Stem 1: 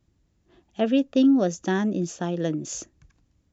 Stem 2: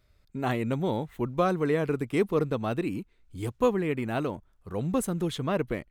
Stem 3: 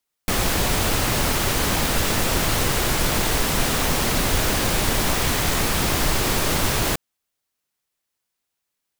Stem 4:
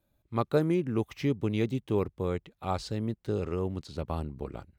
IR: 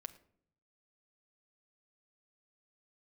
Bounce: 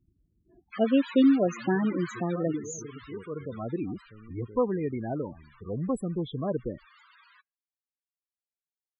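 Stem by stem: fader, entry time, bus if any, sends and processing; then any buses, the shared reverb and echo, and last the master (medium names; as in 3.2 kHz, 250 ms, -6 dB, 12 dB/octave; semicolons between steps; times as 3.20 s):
-1.0 dB, 0.00 s, no send, reverb removal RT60 0.59 s
-2.0 dB, 0.95 s, send -22 dB, treble shelf 4.4 kHz -8 dB; auto duck -15 dB, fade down 1.50 s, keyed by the first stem
2.25 s -7 dB -> 2.61 s -15.5 dB -> 3.59 s -15.5 dB -> 4.23 s -24 dB, 0.45 s, send -23 dB, inverse Chebyshev high-pass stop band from 170 Hz, stop band 80 dB; band-stop 5.8 kHz, Q 6.7
-18.5 dB, 1.20 s, send -13.5 dB, none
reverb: on, RT60 0.65 s, pre-delay 5 ms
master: loudest bins only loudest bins 16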